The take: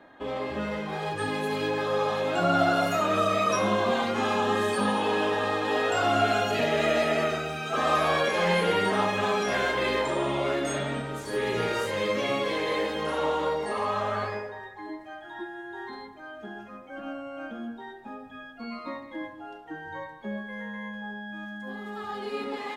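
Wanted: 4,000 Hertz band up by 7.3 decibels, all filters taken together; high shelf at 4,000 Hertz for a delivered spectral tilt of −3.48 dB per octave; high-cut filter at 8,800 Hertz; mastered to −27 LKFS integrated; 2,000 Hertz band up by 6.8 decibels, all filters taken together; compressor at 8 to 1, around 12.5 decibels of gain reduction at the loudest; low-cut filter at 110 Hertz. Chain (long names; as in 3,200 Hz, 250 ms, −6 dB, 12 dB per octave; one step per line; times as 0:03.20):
high-pass filter 110 Hz
low-pass filter 8,800 Hz
parametric band 2,000 Hz +6.5 dB
high-shelf EQ 4,000 Hz +4.5 dB
parametric band 4,000 Hz +4.5 dB
downward compressor 8 to 1, threshold −30 dBFS
level +6.5 dB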